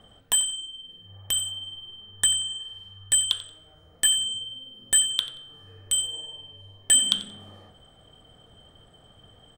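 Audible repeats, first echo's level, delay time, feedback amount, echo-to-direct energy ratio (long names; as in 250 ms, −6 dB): 2, −17.0 dB, 90 ms, 22%, −17.0 dB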